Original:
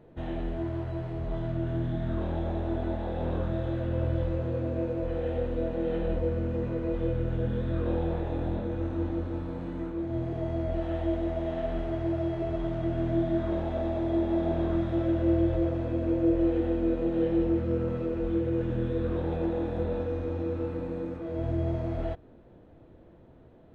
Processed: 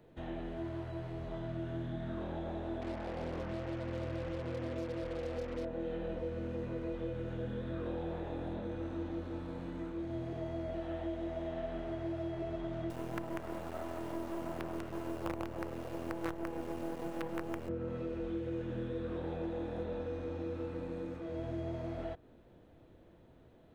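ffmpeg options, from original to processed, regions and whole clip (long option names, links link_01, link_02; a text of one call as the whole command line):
ffmpeg -i in.wav -filter_complex "[0:a]asettb=1/sr,asplit=3[link_01][link_02][link_03];[link_01]atrim=end=2.814[link_04];[link_02]atrim=start=2.81:end=5.65,asetpts=PTS-STARTPTS,afade=type=in:duration=0.004:curve=qsin,afade=type=out:start_time=2.836:duration=0.004:curve=qsin,lowpass=1200,bandreject=frequency=50:width_type=h:width=6,bandreject=frequency=100:width_type=h:width=6,bandreject=frequency=150:width_type=h:width=6,bandreject=frequency=200:width_type=h:width=6,acrusher=bits=5:mix=0:aa=0.5[link_05];[link_03]atrim=start=5.646[link_06];[link_04][link_05]acrossfade=duration=0.004:curve1=hsin:curve2=qsin[link_07];[link_07][link_06]acrossfade=duration=0.004:curve1=qsin:curve2=hsin,asettb=1/sr,asplit=3[link_08][link_09][link_10];[link_08]atrim=end=12.904[link_11];[link_09]atrim=start=12.9:end=17.69,asetpts=PTS-STARTPTS,afade=type=in:duration=0.004:curve=qsin,afade=type=out:start_time=4.786:duration=0.004:curve=qsin,highpass=49,aeval=exprs='val(0)+0.00282*sin(2*PI*2800*n/s)':channel_layout=same,acrusher=bits=4:dc=4:mix=0:aa=0.000001[link_12];[link_10]atrim=start=17.686[link_13];[link_11][link_12]acrossfade=duration=0.004:curve1=hsin:curve2=qsin[link_14];[link_14][link_13]acrossfade=duration=0.004:curve1=qsin:curve2=hsin,highshelf=frequency=2300:gain=11,acrossover=split=130|2000[link_15][link_16][link_17];[link_15]acompressor=threshold=-40dB:ratio=4[link_18];[link_16]acompressor=threshold=-29dB:ratio=4[link_19];[link_17]acompressor=threshold=-57dB:ratio=4[link_20];[link_18][link_19][link_20]amix=inputs=3:normalize=0,volume=-6.5dB" out.wav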